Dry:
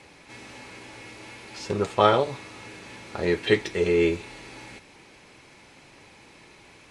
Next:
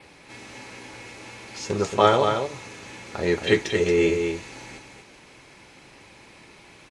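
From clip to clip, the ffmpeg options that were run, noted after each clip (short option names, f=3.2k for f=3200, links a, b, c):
-af "adynamicequalizer=threshold=0.00112:dfrequency=6600:dqfactor=3.6:tfrequency=6600:tqfactor=3.6:attack=5:release=100:ratio=0.375:range=4:mode=boostabove:tftype=bell,aecho=1:1:227:0.501,volume=1dB"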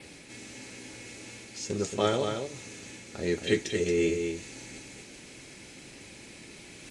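-af "equalizer=f=250:t=o:w=1:g=4,equalizer=f=1k:t=o:w=1:g=-10,equalizer=f=8k:t=o:w=1:g=8,areverse,acompressor=mode=upward:threshold=-32dB:ratio=2.5,areverse,volume=-6.5dB"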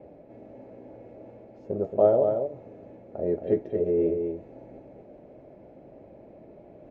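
-af "lowpass=f=630:t=q:w=5.9,volume=-2dB"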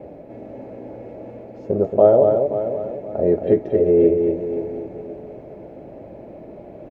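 -filter_complex "[0:a]asplit=2[a][b];[b]alimiter=limit=-19dB:level=0:latency=1:release=256,volume=-0.5dB[c];[a][c]amix=inputs=2:normalize=0,aecho=1:1:527|1054|1581:0.282|0.0874|0.0271,volume=4.5dB"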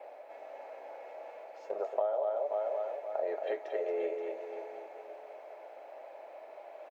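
-af "highpass=f=730:w=0.5412,highpass=f=730:w=1.3066,acompressor=threshold=-28dB:ratio=10"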